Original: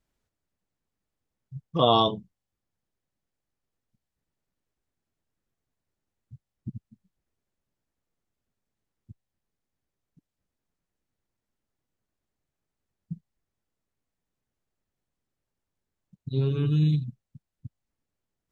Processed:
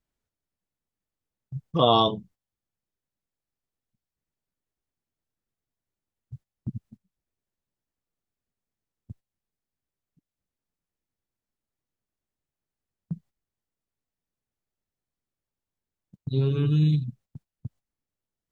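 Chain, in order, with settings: gate -53 dBFS, range -12 dB; in parallel at +0.5 dB: compression, threshold -38 dBFS, peak gain reduction 21 dB

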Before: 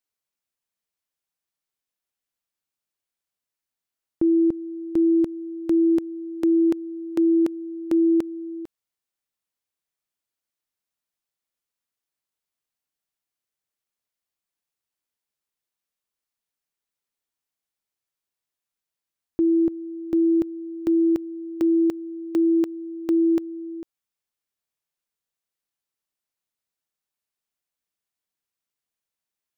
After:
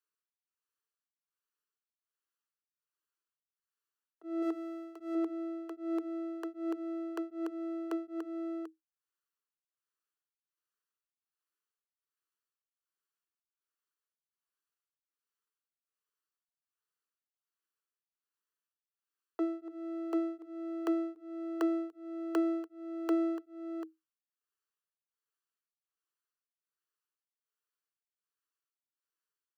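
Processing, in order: comb filter that takes the minimum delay 0.68 ms; 4.42–5.15 s: tilt EQ +2 dB/octave; compression, threshold -23 dBFS, peak gain reduction 6 dB; rippled Chebyshev high-pass 310 Hz, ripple 9 dB; tremolo of two beating tones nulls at 1.3 Hz; trim +2.5 dB

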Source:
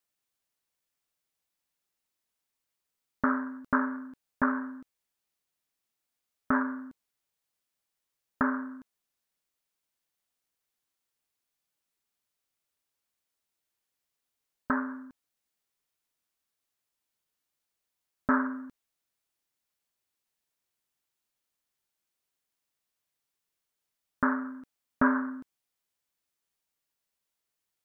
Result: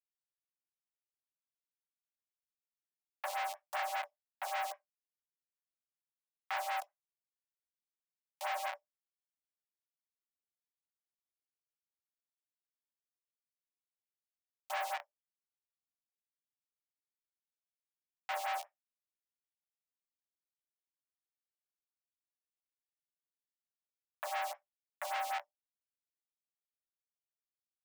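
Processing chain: low-pass 1.2 kHz 24 dB/octave; in parallel at +1 dB: compression, threshold -33 dBFS, peak gain reduction 12 dB; on the sum: word length cut 8-bit, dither none; Schmitt trigger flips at -32.5 dBFS; rippled Chebyshev high-pass 570 Hz, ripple 6 dB; on a send at -9 dB: reverberation RT60 0.15 s, pre-delay 3 ms; on the sum: lamp-driven phase shifter 5.1 Hz; trim +10 dB

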